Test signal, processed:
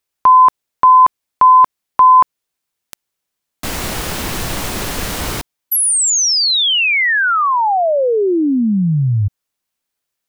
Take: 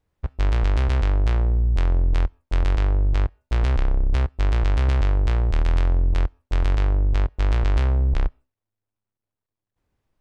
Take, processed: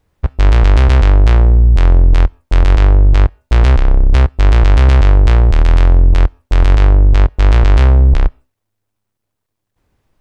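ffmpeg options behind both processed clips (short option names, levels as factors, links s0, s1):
-af "alimiter=level_in=4.47:limit=0.891:release=50:level=0:latency=1,volume=0.891"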